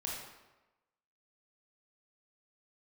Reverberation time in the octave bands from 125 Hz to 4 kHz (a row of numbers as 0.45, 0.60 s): 0.95, 1.0, 1.1, 1.1, 0.95, 0.75 s